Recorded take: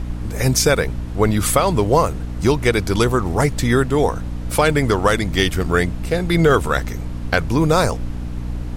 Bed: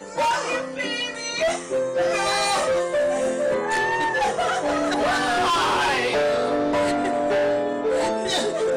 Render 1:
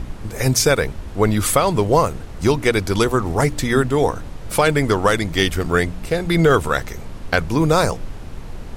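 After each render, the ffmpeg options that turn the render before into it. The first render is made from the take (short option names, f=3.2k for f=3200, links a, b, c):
-af "bandreject=f=60:t=h:w=4,bandreject=f=120:t=h:w=4,bandreject=f=180:t=h:w=4,bandreject=f=240:t=h:w=4,bandreject=f=300:t=h:w=4"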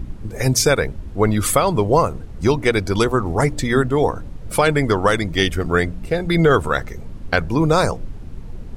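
-af "afftdn=nr=10:nf=-33"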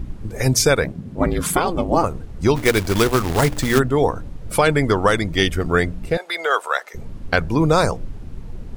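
-filter_complex "[0:a]asettb=1/sr,asplit=3[a][b][c];[a]atrim=end=0.844[d];[b]atrim=start=0.84:end=2.04,asetpts=PTS-STARTPTS,afade=t=in:d=0.004:c=qsin,afade=t=out:st=1.196:d=0.004:c=qsin,aeval=exprs='val(0)*sin(2*PI*170*n/s)':c=same[e];[c]atrim=start=2.036[f];[d][e]acrossfade=d=0.004:c1=hsin:c2=qsin[g];[g][f]acrossfade=d=0.004:c1=qsin:c2=hsin,asplit=3[h][i][j];[h]afade=t=out:st=2.55:d=0.02[k];[i]acrusher=bits=2:mode=log:mix=0:aa=0.000001,afade=t=in:st=2.55:d=0.02,afade=t=out:st=3.78:d=0.02[l];[j]afade=t=in:st=3.78:d=0.02[m];[k][l][m]amix=inputs=3:normalize=0,asettb=1/sr,asplit=3[n][o][p];[n]atrim=end=6.174[q];[o]atrim=start=6.17:end=6.94,asetpts=PTS-STARTPTS,afade=t=in:d=0.004:c=qsin,afade=t=out:st=0.766:d=0.004:c=qsin,highpass=f=580:w=0.5412,highpass=f=580:w=1.3066[r];[p]atrim=start=6.936[s];[q][r]acrossfade=d=0.004:c1=hsin:c2=qsin[t];[t][s]acrossfade=d=0.004:c1=qsin:c2=hsin"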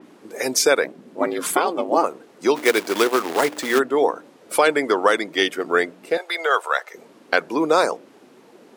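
-af "highpass=f=300:w=0.5412,highpass=f=300:w=1.3066,adynamicequalizer=threshold=0.0141:dfrequency=4000:dqfactor=0.7:tfrequency=4000:tqfactor=0.7:attack=5:release=100:ratio=0.375:range=2:mode=cutabove:tftype=highshelf"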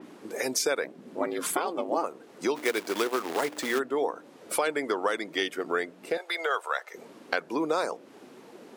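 -af "acompressor=threshold=-32dB:ratio=2"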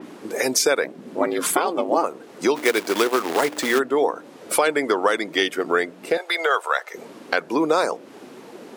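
-af "volume=8dB,alimiter=limit=-3dB:level=0:latency=1"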